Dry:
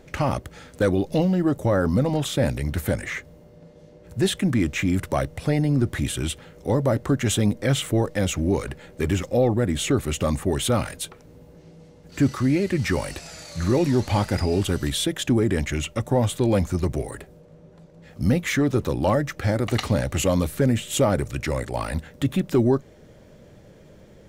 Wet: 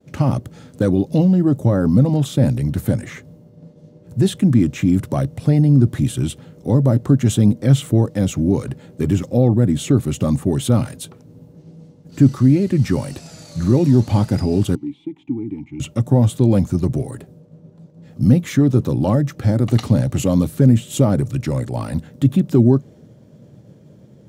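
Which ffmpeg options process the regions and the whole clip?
ffmpeg -i in.wav -filter_complex "[0:a]asettb=1/sr,asplit=3[link_01][link_02][link_03];[link_01]atrim=end=14.754[link_04];[link_02]atrim=start=14.75:end=15.8,asetpts=PTS-STARTPTS,afade=type=in:duration=0.004:curve=qsin,afade=type=out:start_time=1.046:duration=0.004:curve=qsin,acrossover=split=3400[link_05][link_06];[link_06]acompressor=threshold=-40dB:ratio=4:attack=1:release=60[link_07];[link_05][link_07]amix=inputs=2:normalize=0,asubboost=boost=12:cutoff=130,asplit=3[link_08][link_09][link_10];[link_08]bandpass=frequency=300:width_type=q:width=8,volume=0dB[link_11];[link_09]bandpass=frequency=870:width_type=q:width=8,volume=-6dB[link_12];[link_10]bandpass=frequency=2240:width_type=q:width=8,volume=-9dB[link_13];[link_11][link_12][link_13]amix=inputs=3:normalize=0[link_14];[link_03]atrim=start=15.796[link_15];[link_04][link_14]acrossfade=duration=0.004:curve1=hsin:curve2=qsin[link_16];[link_16][link_15]acrossfade=duration=0.004:curve1=qsin:curve2=hsin,highpass=85,agate=range=-33dB:threshold=-46dB:ratio=3:detection=peak,equalizer=frequency=125:width_type=o:width=1:gain=11,equalizer=frequency=250:width_type=o:width=1:gain=7,equalizer=frequency=2000:width_type=o:width=1:gain=-6,volume=-1dB" out.wav

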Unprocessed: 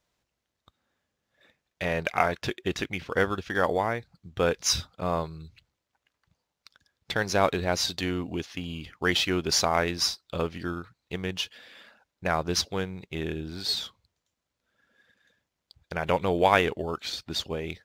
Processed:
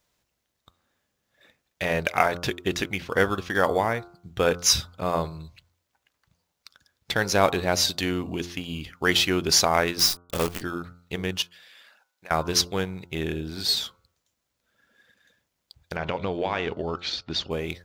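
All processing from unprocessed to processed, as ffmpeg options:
ffmpeg -i in.wav -filter_complex "[0:a]asettb=1/sr,asplit=3[link_01][link_02][link_03];[link_01]atrim=end=9.994[link_04];[link_02]atrim=start=9.99:end=10.62,asetpts=PTS-STARTPTS,afade=type=in:duration=0.004:curve=qsin,afade=type=out:start_time=0.626:duration=0.004:curve=qsin,bandreject=frequency=60:width_type=h:width=6,bandreject=frequency=120:width_type=h:width=6,acrusher=bits=6:dc=4:mix=0:aa=0.000001[link_05];[link_03]atrim=start=10.616[link_06];[link_04][link_05]acrossfade=duration=0.004:curve1=hsin:curve2=qsin[link_07];[link_07][link_06]acrossfade=duration=0.004:curve1=qsin:curve2=hsin,asettb=1/sr,asplit=3[link_08][link_09][link_10];[link_08]atrim=end=11.424[link_11];[link_09]atrim=start=11.42:end=12.31,asetpts=PTS-STARTPTS,afade=type=in:duration=0.004:curve=qsin,afade=type=out:start_time=0.886:duration=0.004:curve=qsin,highpass=frequency=1200:poles=1,acompressor=threshold=-54dB:ratio=2:attack=3.2:release=140:knee=1:detection=peak[link_12];[link_10]atrim=start=12.306[link_13];[link_11][link_12]acrossfade=duration=0.004:curve1=hsin:curve2=qsin[link_14];[link_14][link_13]acrossfade=duration=0.004:curve1=qsin:curve2=hsin,asettb=1/sr,asplit=3[link_15][link_16][link_17];[link_15]atrim=end=15.964[link_18];[link_16]atrim=start=15.96:end=17.51,asetpts=PTS-STARTPTS,afade=type=in:duration=0.004:curve=qsin,afade=type=out:start_time=1.546:duration=0.004:curve=qsin,lowpass=frequency=5300:width=0.5412,lowpass=frequency=5300:width=1.3066,acompressor=threshold=-26dB:ratio=4:attack=3.2:release=140:knee=1:detection=peak[link_19];[link_17]atrim=start=17.506[link_20];[link_18][link_19]acrossfade=duration=0.004:curve1=hsin:curve2=qsin[link_21];[link_21][link_20]acrossfade=duration=0.004:curve1=qsin:curve2=hsin,highshelf=frequency=8100:gain=8,bandreject=frequency=87.27:width_type=h:width=4,bandreject=frequency=174.54:width_type=h:width=4,bandreject=frequency=261.81:width_type=h:width=4,bandreject=frequency=349.08:width_type=h:width=4,bandreject=frequency=436.35:width_type=h:width=4,bandreject=frequency=523.62:width_type=h:width=4,bandreject=frequency=610.89:width_type=h:width=4,bandreject=frequency=698.16:width_type=h:width=4,bandreject=frequency=785.43:width_type=h:width=4,bandreject=frequency=872.7:width_type=h:width=4,bandreject=frequency=959.97:width_type=h:width=4,bandreject=frequency=1047.24:width_type=h:width=4,bandreject=frequency=1134.51:width_type=h:width=4,bandreject=frequency=1221.78:width_type=h:width=4,bandreject=frequency=1309.05:width_type=h:width=4,bandreject=frequency=1396.32:width_type=h:width=4,bandreject=frequency=1483.59:width_type=h:width=4,volume=3dB" out.wav

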